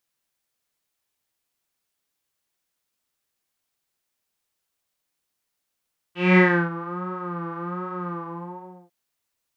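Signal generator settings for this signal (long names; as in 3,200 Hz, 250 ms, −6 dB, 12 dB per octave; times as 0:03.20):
subtractive patch with vibrato F4, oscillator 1 triangle, oscillator 2 saw, interval −12 semitones, detune 28 cents, oscillator 2 level −2.5 dB, sub −2 dB, filter lowpass, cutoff 720 Hz, Q 7.1, filter envelope 2 octaves, filter decay 0.60 s, filter sustain 40%, attack 223 ms, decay 0.32 s, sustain −18 dB, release 0.81 s, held 1.94 s, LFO 1.3 Hz, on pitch 73 cents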